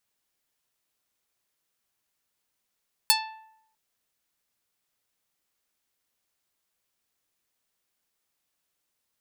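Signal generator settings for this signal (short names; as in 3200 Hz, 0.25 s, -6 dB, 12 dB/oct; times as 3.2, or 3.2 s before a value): plucked string A5, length 0.65 s, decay 0.77 s, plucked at 0.45, medium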